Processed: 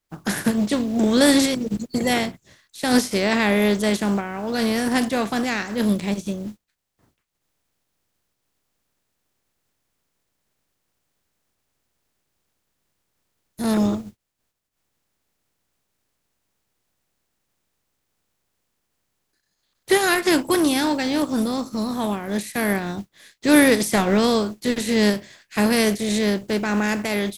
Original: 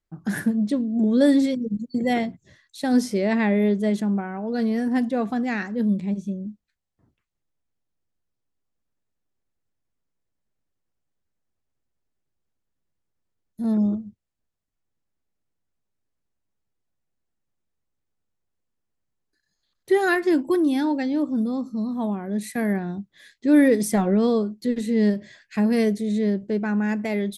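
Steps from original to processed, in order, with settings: spectral contrast lowered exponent 0.6; gain +1.5 dB

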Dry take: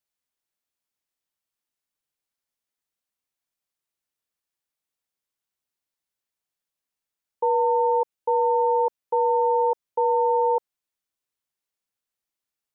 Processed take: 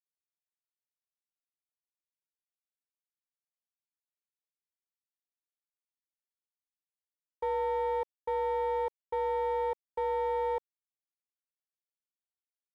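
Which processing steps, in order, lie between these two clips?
bell 930 Hz -6.5 dB 3 oct; sample leveller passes 1; sample gate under -52.5 dBFS; gain -5.5 dB

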